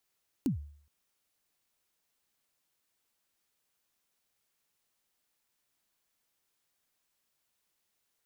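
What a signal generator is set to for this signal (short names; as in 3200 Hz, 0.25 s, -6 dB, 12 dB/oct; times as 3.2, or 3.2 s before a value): kick drum length 0.42 s, from 310 Hz, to 73 Hz, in 0.116 s, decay 0.55 s, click on, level -23 dB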